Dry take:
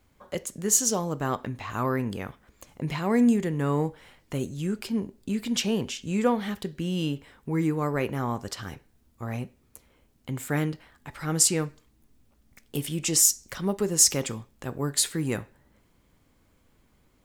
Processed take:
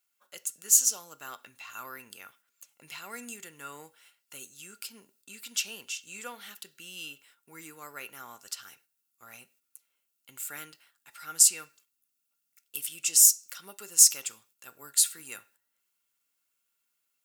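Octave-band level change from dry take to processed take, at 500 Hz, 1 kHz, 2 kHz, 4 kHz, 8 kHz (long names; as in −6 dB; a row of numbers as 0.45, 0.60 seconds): −22.0, −12.5, −5.5, −2.0, +1.5 decibels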